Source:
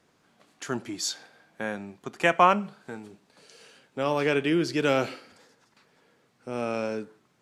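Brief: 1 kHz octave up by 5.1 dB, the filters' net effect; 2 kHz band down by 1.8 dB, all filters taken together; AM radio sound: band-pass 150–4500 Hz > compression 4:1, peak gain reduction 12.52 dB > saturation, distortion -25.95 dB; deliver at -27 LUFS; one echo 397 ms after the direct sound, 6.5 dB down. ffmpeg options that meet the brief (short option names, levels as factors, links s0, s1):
-af "highpass=150,lowpass=4500,equalizer=f=1000:t=o:g=7.5,equalizer=f=2000:t=o:g=-5,aecho=1:1:397:0.473,acompressor=threshold=0.0708:ratio=4,asoftclip=threshold=0.237,volume=1.58"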